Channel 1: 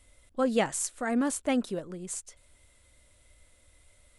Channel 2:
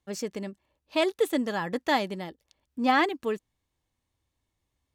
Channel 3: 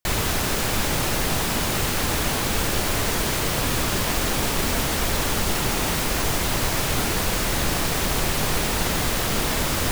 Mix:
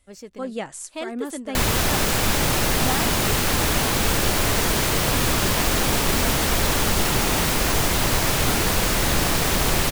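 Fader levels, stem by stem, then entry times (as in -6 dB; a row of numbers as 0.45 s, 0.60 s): -4.0 dB, -7.0 dB, +2.5 dB; 0.00 s, 0.00 s, 1.50 s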